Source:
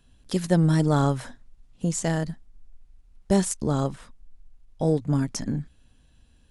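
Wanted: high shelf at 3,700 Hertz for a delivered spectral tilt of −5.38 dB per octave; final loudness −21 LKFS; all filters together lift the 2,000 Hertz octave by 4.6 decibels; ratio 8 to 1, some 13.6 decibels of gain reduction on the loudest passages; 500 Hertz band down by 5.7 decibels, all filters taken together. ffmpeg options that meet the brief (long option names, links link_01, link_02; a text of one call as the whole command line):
ffmpeg -i in.wav -af "equalizer=frequency=500:width_type=o:gain=-7.5,equalizer=frequency=2000:width_type=o:gain=7,highshelf=frequency=3700:gain=-4,acompressor=threshold=-32dB:ratio=8,volume=16.5dB" out.wav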